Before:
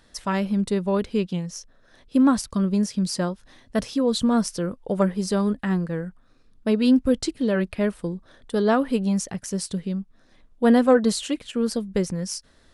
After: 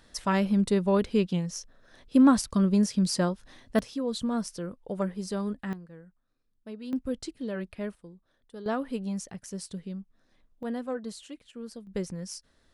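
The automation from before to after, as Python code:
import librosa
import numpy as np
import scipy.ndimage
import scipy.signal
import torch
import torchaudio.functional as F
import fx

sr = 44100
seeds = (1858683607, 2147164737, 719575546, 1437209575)

y = fx.gain(x, sr, db=fx.steps((0.0, -1.0), (3.79, -9.0), (5.73, -20.0), (6.93, -11.5), (7.95, -19.5), (8.66, -10.0), (10.63, -17.0), (11.87, -9.0)))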